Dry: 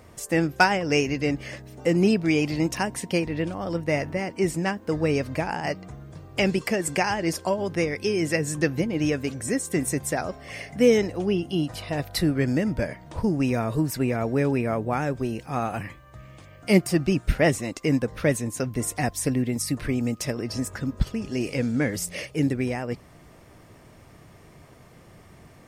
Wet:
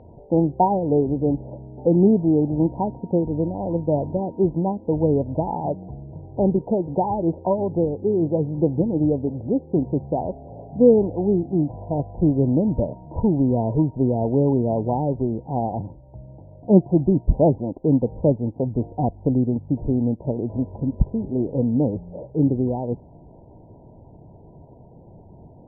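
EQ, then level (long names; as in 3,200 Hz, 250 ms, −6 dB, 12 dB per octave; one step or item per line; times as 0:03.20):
linear-phase brick-wall low-pass 1,000 Hz
high-frequency loss of the air 350 metres
+5.0 dB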